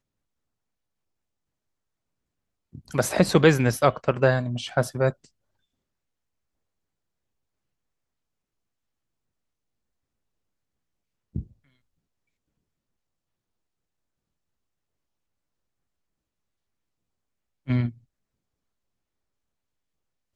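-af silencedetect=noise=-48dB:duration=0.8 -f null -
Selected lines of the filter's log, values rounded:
silence_start: 0.00
silence_end: 2.73 | silence_duration: 2.73
silence_start: 5.27
silence_end: 11.35 | silence_duration: 6.08
silence_start: 11.52
silence_end: 17.67 | silence_duration: 6.15
silence_start: 17.98
silence_end: 20.35 | silence_duration: 2.37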